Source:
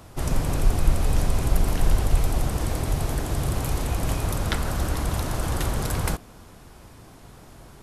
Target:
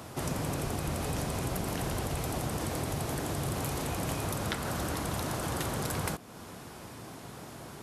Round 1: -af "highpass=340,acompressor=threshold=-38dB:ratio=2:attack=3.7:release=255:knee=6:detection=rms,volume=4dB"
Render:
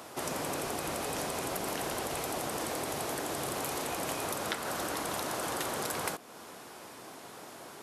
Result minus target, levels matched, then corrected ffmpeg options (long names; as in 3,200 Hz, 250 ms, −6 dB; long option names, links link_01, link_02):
125 Hz band −11.5 dB
-af "highpass=120,acompressor=threshold=-38dB:ratio=2:attack=3.7:release=255:knee=6:detection=rms,volume=4dB"